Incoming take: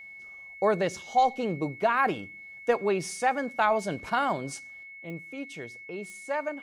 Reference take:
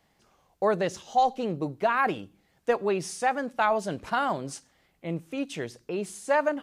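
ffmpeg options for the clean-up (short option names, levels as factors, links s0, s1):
-af "adeclick=t=4,bandreject=f=2200:w=30,asetnsamples=n=441:p=0,asendcmd='4.83 volume volume 7dB',volume=1"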